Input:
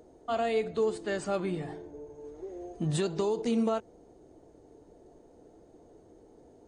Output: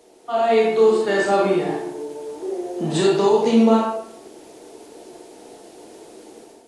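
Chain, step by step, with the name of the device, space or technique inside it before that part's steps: filmed off a television (BPF 250–7100 Hz; bell 860 Hz +5 dB 0.51 oct; reverb RT60 0.75 s, pre-delay 24 ms, DRR -3 dB; white noise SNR 30 dB; AGC gain up to 9 dB; AAC 48 kbps 24000 Hz)

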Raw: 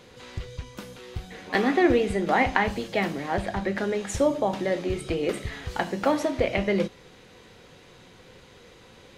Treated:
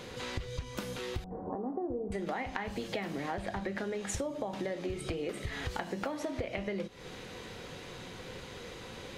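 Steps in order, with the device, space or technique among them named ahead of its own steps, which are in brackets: serial compression, leveller first (compressor 2:1, threshold -28 dBFS, peak gain reduction 7.5 dB; compressor 6:1, threshold -39 dBFS, peak gain reduction 16 dB); 1.24–2.12 steep low-pass 1000 Hz 36 dB/oct; gain +5.5 dB

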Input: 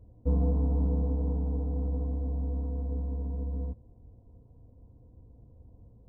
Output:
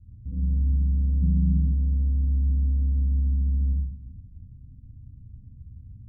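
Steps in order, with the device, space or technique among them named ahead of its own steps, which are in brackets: club heard from the street (limiter -27.5 dBFS, peak gain reduction 10.5 dB; LPF 200 Hz 24 dB/oct; reverb RT60 0.80 s, pre-delay 46 ms, DRR -4.5 dB); 1.22–1.73 bell 170 Hz +14 dB 0.63 oct; gain +2.5 dB

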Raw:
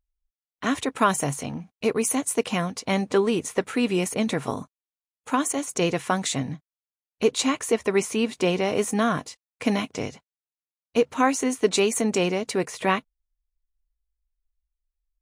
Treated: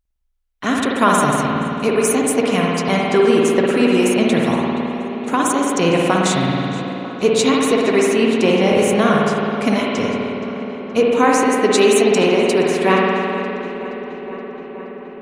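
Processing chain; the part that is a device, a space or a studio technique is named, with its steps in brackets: dub delay into a spring reverb (darkening echo 0.473 s, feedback 79%, low-pass 4000 Hz, level -15 dB; spring tank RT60 2.6 s, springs 53 ms, chirp 30 ms, DRR -2.5 dB); gain +4.5 dB

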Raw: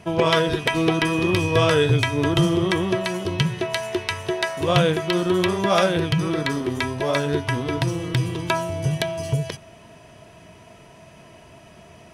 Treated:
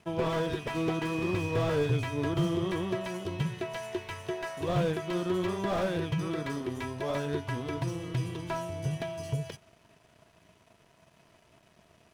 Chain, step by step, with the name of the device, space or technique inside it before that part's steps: early transistor amplifier (crossover distortion -49 dBFS; slew limiter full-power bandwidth 96 Hz); gain -9 dB

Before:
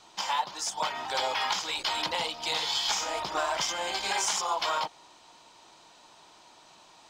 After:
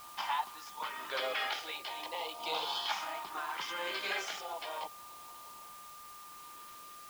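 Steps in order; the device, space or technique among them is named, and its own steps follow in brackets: 1.47–2.39 steep high-pass 280 Hz; shortwave radio (BPF 330–2700 Hz; tremolo 0.75 Hz, depth 58%; LFO notch saw up 0.35 Hz 420–2200 Hz; whine 1200 Hz -50 dBFS; white noise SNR 15 dB)

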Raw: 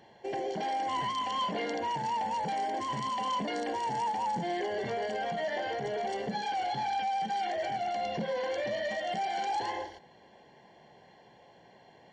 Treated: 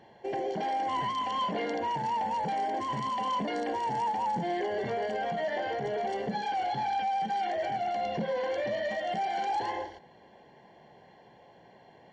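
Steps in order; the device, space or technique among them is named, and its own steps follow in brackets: behind a face mask (high shelf 3400 Hz -8 dB); gain +2 dB

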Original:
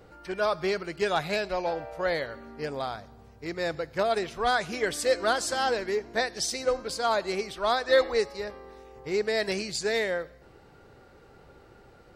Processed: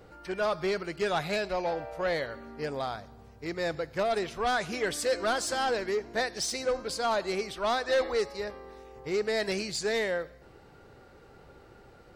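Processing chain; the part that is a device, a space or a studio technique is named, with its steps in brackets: saturation between pre-emphasis and de-emphasis (high shelf 7700 Hz +10 dB; soft clip -21 dBFS, distortion -14 dB; high shelf 7700 Hz -10 dB)

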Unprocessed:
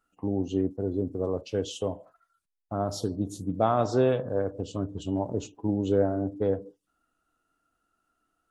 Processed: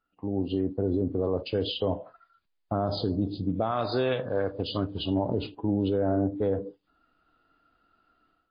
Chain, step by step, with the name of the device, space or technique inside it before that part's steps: 3.71–5.11 tilt shelf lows -7 dB, about 1300 Hz; low-bitrate web radio (AGC gain up to 13 dB; limiter -13 dBFS, peak gain reduction 11 dB; gain -4 dB; MP3 24 kbps 11025 Hz)

